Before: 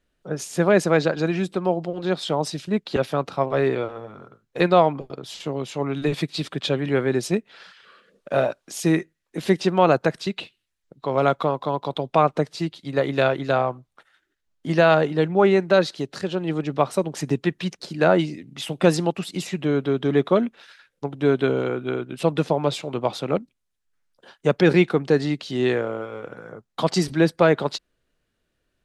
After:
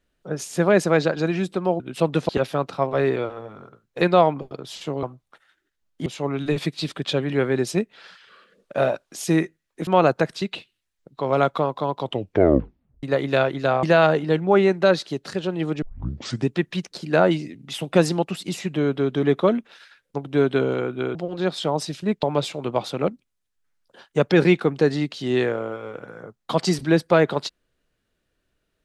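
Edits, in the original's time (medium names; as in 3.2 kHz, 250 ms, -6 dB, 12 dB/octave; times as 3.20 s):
1.80–2.88 s: swap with 22.03–22.52 s
9.43–9.72 s: delete
11.85 s: tape stop 1.03 s
13.68–14.71 s: move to 5.62 s
16.70 s: tape start 0.65 s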